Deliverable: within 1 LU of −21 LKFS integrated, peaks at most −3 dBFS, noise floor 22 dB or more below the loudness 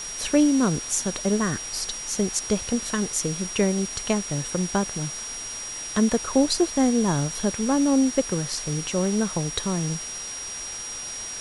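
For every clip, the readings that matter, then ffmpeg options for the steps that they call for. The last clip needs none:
interfering tone 5,700 Hz; level of the tone −33 dBFS; background noise floor −34 dBFS; target noise floor −47 dBFS; integrated loudness −24.5 LKFS; sample peak −7.5 dBFS; target loudness −21.0 LKFS
→ -af "bandreject=frequency=5700:width=30"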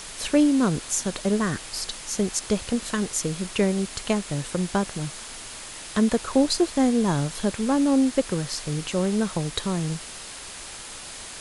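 interfering tone none found; background noise floor −39 dBFS; target noise floor −47 dBFS
→ -af "afftdn=noise_reduction=8:noise_floor=-39"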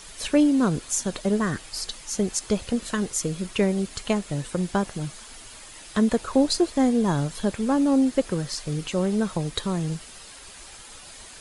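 background noise floor −44 dBFS; target noise floor −47 dBFS
→ -af "afftdn=noise_reduction=6:noise_floor=-44"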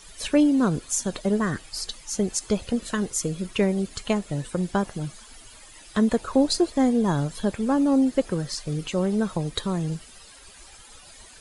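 background noise floor −48 dBFS; integrated loudness −25.0 LKFS; sample peak −8.5 dBFS; target loudness −21.0 LKFS
→ -af "volume=4dB"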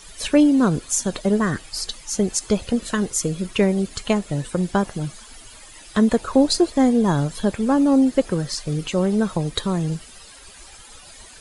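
integrated loudness −21.0 LKFS; sample peak −4.5 dBFS; background noise floor −44 dBFS

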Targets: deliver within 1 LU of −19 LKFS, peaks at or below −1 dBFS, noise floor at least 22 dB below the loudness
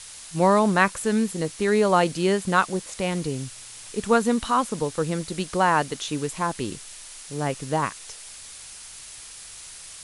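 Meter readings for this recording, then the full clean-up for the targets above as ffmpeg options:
background noise floor −42 dBFS; target noise floor −46 dBFS; integrated loudness −24.0 LKFS; sample peak −5.0 dBFS; target loudness −19.0 LKFS
→ -af "afftdn=noise_reduction=6:noise_floor=-42"
-af "volume=5dB,alimiter=limit=-1dB:level=0:latency=1"

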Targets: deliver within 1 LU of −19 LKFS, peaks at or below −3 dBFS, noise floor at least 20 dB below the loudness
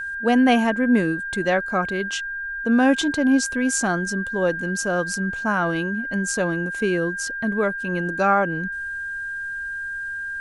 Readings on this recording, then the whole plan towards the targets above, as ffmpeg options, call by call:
interfering tone 1,600 Hz; level of the tone −27 dBFS; integrated loudness −22.5 LKFS; sample peak −5.5 dBFS; target loudness −19.0 LKFS
→ -af "bandreject=frequency=1600:width=30"
-af "volume=3.5dB,alimiter=limit=-3dB:level=0:latency=1"

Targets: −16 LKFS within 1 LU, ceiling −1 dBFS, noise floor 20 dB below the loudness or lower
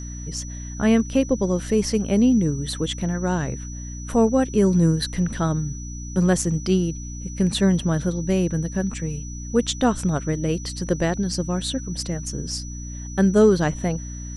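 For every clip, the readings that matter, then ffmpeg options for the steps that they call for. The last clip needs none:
mains hum 60 Hz; hum harmonics up to 300 Hz; level of the hum −32 dBFS; interfering tone 5,900 Hz; level of the tone −39 dBFS; integrated loudness −22.5 LKFS; sample peak −5.5 dBFS; target loudness −16.0 LKFS
→ -af "bandreject=frequency=60:width_type=h:width=6,bandreject=frequency=120:width_type=h:width=6,bandreject=frequency=180:width_type=h:width=6,bandreject=frequency=240:width_type=h:width=6,bandreject=frequency=300:width_type=h:width=6"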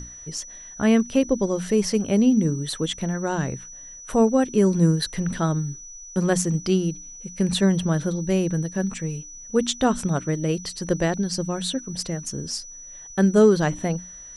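mains hum none found; interfering tone 5,900 Hz; level of the tone −39 dBFS
→ -af "bandreject=frequency=5900:width=30"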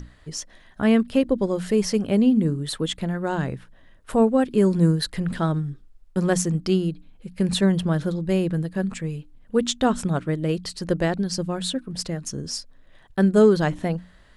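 interfering tone none found; integrated loudness −23.0 LKFS; sample peak −6.0 dBFS; target loudness −16.0 LKFS
→ -af "volume=7dB,alimiter=limit=-1dB:level=0:latency=1"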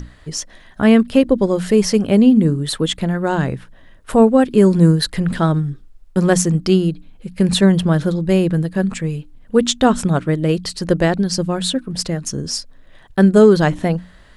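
integrated loudness −16.5 LKFS; sample peak −1.0 dBFS; background noise floor −45 dBFS

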